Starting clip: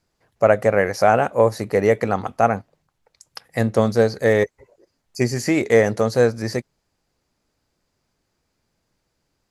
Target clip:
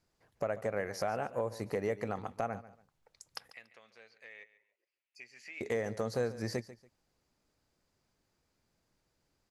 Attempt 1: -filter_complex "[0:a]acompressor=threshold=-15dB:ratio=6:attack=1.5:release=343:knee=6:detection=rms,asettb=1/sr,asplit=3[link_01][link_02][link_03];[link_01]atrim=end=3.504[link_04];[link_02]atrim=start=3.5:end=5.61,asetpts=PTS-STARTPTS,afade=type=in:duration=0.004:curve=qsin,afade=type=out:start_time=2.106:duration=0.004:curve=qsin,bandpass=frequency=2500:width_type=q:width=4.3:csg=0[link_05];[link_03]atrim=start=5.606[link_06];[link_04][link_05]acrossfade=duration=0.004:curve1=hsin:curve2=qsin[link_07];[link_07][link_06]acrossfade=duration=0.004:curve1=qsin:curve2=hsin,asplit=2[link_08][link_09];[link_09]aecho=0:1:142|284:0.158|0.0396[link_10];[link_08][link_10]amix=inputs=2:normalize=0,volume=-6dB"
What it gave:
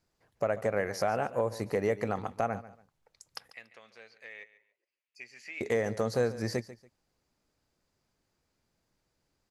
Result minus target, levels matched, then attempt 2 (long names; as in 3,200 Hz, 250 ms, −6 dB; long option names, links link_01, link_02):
downward compressor: peak gain reduction −5 dB
-filter_complex "[0:a]acompressor=threshold=-21dB:ratio=6:attack=1.5:release=343:knee=6:detection=rms,asettb=1/sr,asplit=3[link_01][link_02][link_03];[link_01]atrim=end=3.504[link_04];[link_02]atrim=start=3.5:end=5.61,asetpts=PTS-STARTPTS,afade=type=in:duration=0.004:curve=qsin,afade=type=out:start_time=2.106:duration=0.004:curve=qsin,bandpass=frequency=2500:width_type=q:width=4.3:csg=0[link_05];[link_03]atrim=start=5.606[link_06];[link_04][link_05]acrossfade=duration=0.004:curve1=hsin:curve2=qsin[link_07];[link_07][link_06]acrossfade=duration=0.004:curve1=qsin:curve2=hsin,asplit=2[link_08][link_09];[link_09]aecho=0:1:142|284:0.158|0.0396[link_10];[link_08][link_10]amix=inputs=2:normalize=0,volume=-6dB"